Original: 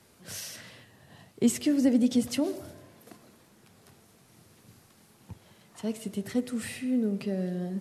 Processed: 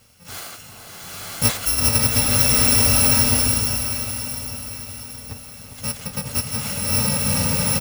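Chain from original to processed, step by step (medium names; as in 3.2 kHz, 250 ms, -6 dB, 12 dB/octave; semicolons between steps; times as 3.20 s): bit-reversed sample order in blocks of 128 samples; harmony voices -12 st -11 dB, +3 st -15 dB; treble shelf 9 kHz -7 dB; on a send: echo whose repeats swap between lows and highs 404 ms, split 1.1 kHz, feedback 65%, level -7 dB; on the sum: swelling reverb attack 1130 ms, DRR -5 dB; trim +8 dB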